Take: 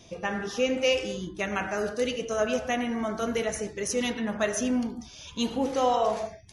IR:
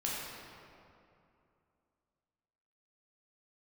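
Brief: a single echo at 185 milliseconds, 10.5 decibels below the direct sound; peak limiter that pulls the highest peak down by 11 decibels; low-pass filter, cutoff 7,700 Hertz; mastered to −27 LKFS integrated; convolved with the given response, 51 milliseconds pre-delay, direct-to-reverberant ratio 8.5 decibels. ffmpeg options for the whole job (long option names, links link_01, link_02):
-filter_complex "[0:a]lowpass=7700,alimiter=limit=-24dB:level=0:latency=1,aecho=1:1:185:0.299,asplit=2[link_01][link_02];[1:a]atrim=start_sample=2205,adelay=51[link_03];[link_02][link_03]afir=irnorm=-1:irlink=0,volume=-13dB[link_04];[link_01][link_04]amix=inputs=2:normalize=0,volume=5dB"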